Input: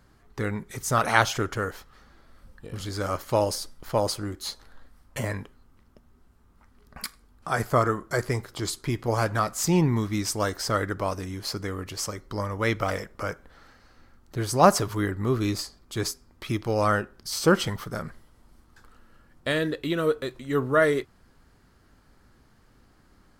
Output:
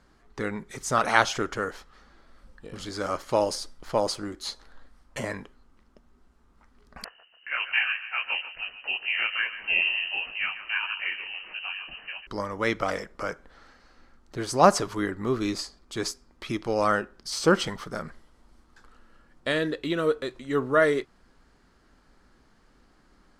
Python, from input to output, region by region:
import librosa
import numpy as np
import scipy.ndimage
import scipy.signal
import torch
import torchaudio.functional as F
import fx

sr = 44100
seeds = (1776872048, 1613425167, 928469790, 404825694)

y = fx.chain(x, sr, fx.echo_feedback(ms=142, feedback_pct=47, wet_db=-13.0),
    fx.freq_invert(carrier_hz=2900),
    fx.detune_double(cents=53), at=(7.04, 12.27))
y = scipy.signal.sosfilt(scipy.signal.butter(2, 8300.0, 'lowpass', fs=sr, output='sos'), y)
y = fx.peak_eq(y, sr, hz=100.0, db=-11.0, octaves=0.92)